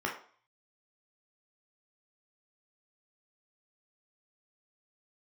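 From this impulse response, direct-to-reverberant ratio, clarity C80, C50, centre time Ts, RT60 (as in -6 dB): -1.5 dB, 12.5 dB, 8.0 dB, 24 ms, 0.50 s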